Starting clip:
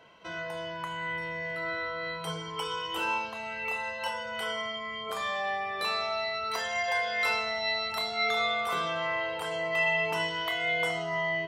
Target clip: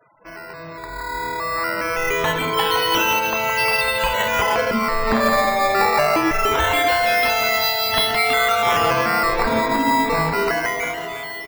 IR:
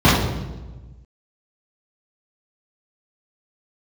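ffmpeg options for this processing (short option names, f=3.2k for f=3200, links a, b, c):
-filter_complex "[0:a]highshelf=f=3.4k:g=11,acompressor=threshold=-30dB:ratio=6,aecho=1:1:166:0.531,asplit=2[a][b];[1:a]atrim=start_sample=2205,atrim=end_sample=3969[c];[b][c]afir=irnorm=-1:irlink=0,volume=-39.5dB[d];[a][d]amix=inputs=2:normalize=0,acrusher=samples=10:mix=1:aa=0.000001:lfo=1:lforange=10:lforate=0.23,equalizer=f=8.3k:t=o:w=2.1:g=-8.5,afftfilt=real='re*gte(hypot(re,im),0.00398)':imag='im*gte(hypot(re,im),0.00398)':win_size=1024:overlap=0.75,dynaudnorm=f=470:g=7:m=16dB,aecho=1:1:325|650|975|1300|1625:0.188|0.102|0.0549|0.0297|0.016"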